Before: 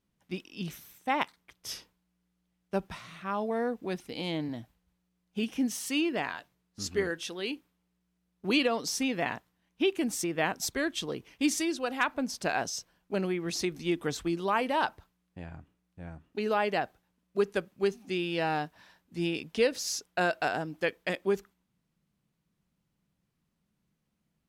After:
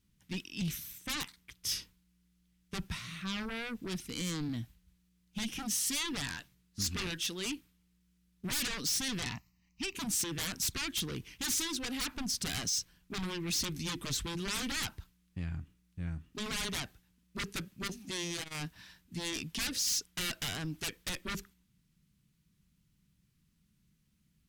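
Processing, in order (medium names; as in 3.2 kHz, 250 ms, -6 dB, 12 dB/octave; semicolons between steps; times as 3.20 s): 9.23–9.95 s: static phaser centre 2.3 kHz, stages 8; sine folder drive 18 dB, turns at -13 dBFS; amplifier tone stack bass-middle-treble 6-0-2; 17.87–18.61 s: transformer saturation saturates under 420 Hz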